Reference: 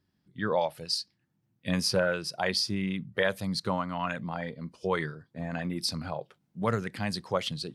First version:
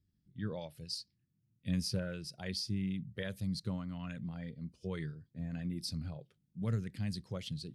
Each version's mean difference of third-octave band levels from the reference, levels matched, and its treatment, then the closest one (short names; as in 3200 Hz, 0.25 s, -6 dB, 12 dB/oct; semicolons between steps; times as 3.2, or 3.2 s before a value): 5.0 dB: passive tone stack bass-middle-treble 10-0-1; gain +11 dB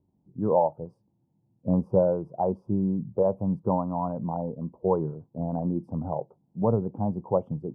10.0 dB: elliptic low-pass 920 Hz, stop band 50 dB; gain +6 dB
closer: first